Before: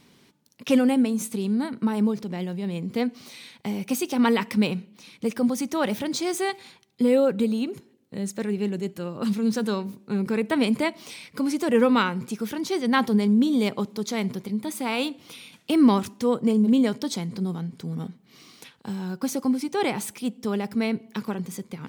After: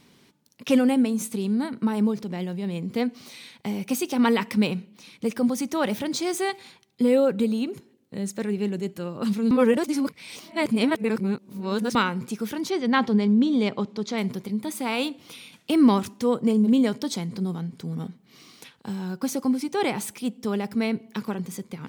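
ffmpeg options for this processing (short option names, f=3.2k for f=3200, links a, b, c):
-filter_complex "[0:a]asettb=1/sr,asplit=3[a][b][c];[a]atrim=end=12.704[d];[b]atrim=start=12.7:end=14.18,asetpts=PTS-STARTPTS,afade=t=in:d=0.004:c=qsin,afade=t=out:st=1.476:d=0.004:c=qsin,lowpass=5.1k[e];[c]atrim=start=14.176[f];[d][e]acrossfade=d=0.004:c1=hsin:c2=qsin[g];[g][f]acrossfade=d=0.004:c1=qsin:c2=hsin,asplit=3[h][i][j];[h]atrim=end=9.512[k];[i]atrim=start=9.508:end=11.952,asetpts=PTS-STARTPTS,areverse[l];[j]atrim=start=11.948[m];[k][l]acrossfade=d=0.004:c1=hsin:c2=hsin[n];[n][m]acrossfade=d=0.004:c1=hsin:c2=hsin"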